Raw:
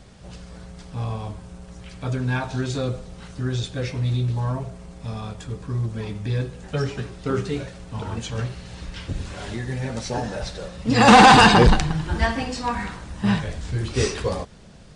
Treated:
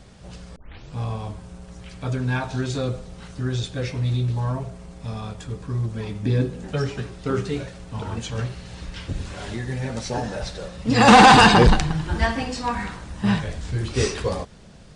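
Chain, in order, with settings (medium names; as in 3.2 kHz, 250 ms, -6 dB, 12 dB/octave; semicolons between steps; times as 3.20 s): 0.56 s: tape start 0.40 s; 6.23–6.73 s: peaking EQ 270 Hz +10 dB 1.5 oct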